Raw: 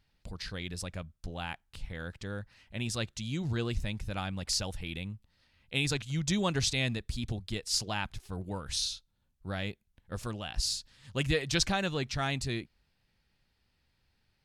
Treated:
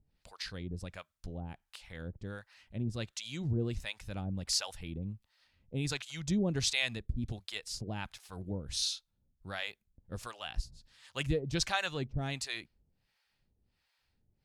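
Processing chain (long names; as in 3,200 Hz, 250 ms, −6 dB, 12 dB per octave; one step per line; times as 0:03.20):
two-band tremolo in antiphase 1.4 Hz, depth 100%, crossover 600 Hz
level +1.5 dB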